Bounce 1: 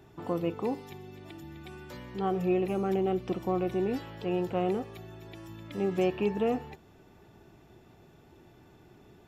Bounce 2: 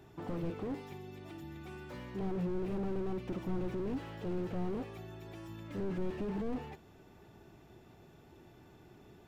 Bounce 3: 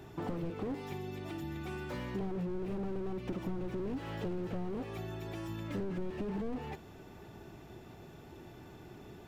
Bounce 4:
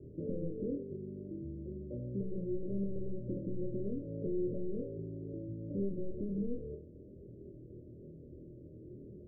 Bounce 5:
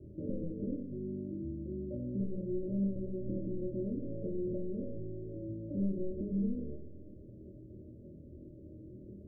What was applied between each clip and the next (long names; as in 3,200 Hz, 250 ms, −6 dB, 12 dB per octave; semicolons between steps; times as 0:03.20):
dynamic equaliser 2,400 Hz, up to +6 dB, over −53 dBFS, Q 1.3; slew-rate limiting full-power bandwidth 7 Hz; level −1.5 dB
downward compressor 6 to 1, threshold −40 dBFS, peak gain reduction 10 dB; level +6.5 dB
Chebyshev low-pass filter 590 Hz, order 8; on a send: flutter between parallel walls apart 4.3 metres, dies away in 0.36 s; on the sum: level −1 dB
low-shelf EQ 180 Hz +6.5 dB; on a send at −2 dB: convolution reverb RT60 0.50 s, pre-delay 3 ms; on the sum: level −3.5 dB